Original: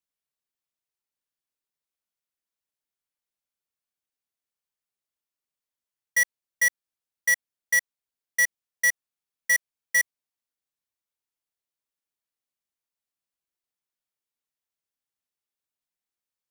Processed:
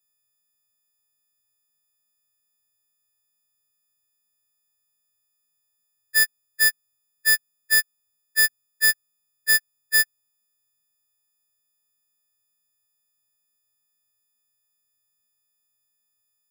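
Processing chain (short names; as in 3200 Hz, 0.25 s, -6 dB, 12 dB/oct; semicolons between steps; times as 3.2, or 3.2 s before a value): frequency quantiser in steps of 6 st; tone controls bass +12 dB, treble 0 dB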